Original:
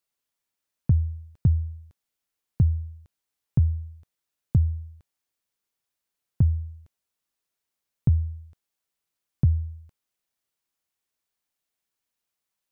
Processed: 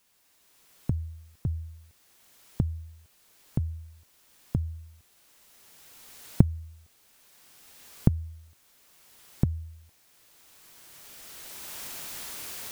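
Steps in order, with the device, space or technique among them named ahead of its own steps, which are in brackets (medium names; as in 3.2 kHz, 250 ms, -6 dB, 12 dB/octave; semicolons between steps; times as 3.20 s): cheap recorder with automatic gain (white noise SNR 30 dB; recorder AGC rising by 13 dB/s); trim -10.5 dB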